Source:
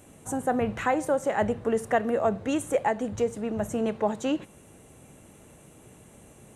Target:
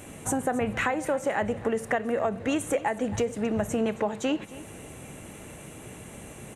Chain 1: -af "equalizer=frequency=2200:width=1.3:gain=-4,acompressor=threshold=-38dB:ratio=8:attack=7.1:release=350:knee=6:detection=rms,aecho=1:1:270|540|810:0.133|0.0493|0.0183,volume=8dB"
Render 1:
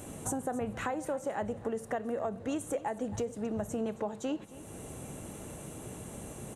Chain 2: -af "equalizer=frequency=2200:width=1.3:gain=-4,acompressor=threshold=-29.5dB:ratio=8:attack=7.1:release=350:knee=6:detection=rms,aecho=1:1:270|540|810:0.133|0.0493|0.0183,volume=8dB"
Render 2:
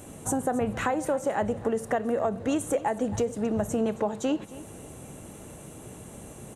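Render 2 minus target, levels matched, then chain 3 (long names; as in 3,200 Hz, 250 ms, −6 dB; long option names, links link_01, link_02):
2,000 Hz band −5.0 dB
-af "equalizer=frequency=2200:width=1.3:gain=5,acompressor=threshold=-29.5dB:ratio=8:attack=7.1:release=350:knee=6:detection=rms,aecho=1:1:270|540|810:0.133|0.0493|0.0183,volume=8dB"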